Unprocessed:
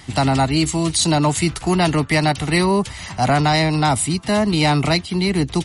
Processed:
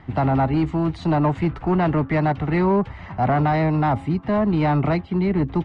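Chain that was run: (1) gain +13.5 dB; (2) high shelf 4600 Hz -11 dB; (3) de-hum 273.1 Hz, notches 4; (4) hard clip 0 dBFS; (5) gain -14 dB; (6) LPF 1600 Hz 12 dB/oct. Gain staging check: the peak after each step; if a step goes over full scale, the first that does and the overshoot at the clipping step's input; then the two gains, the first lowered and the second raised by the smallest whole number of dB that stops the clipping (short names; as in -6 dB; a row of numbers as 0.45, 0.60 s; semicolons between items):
+7.5, +6.5, +6.5, 0.0, -14.0, -13.5 dBFS; step 1, 6.5 dB; step 1 +6.5 dB, step 5 -7 dB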